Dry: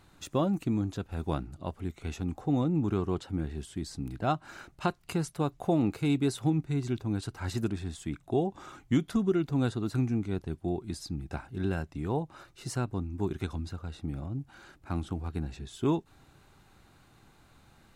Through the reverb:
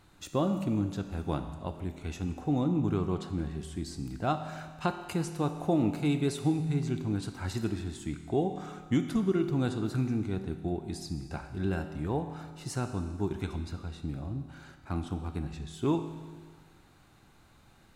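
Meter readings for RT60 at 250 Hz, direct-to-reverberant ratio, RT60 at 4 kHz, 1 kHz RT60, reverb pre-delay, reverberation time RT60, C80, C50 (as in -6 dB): 1.6 s, 7.0 dB, 1.6 s, 1.6 s, 5 ms, 1.6 s, 10.0 dB, 9.0 dB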